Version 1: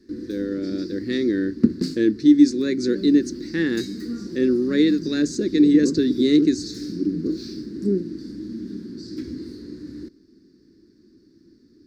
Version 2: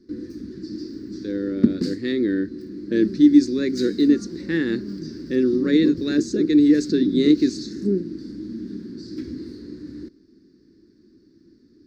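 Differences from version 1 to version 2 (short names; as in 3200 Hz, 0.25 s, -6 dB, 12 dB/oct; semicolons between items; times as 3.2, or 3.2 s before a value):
speech: entry +0.95 s; master: add bell 13000 Hz -7 dB 1.4 oct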